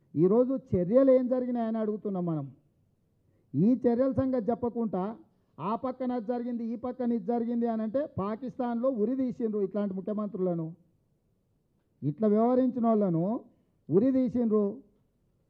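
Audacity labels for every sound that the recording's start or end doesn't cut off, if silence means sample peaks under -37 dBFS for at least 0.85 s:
3.540000	10.700000	sound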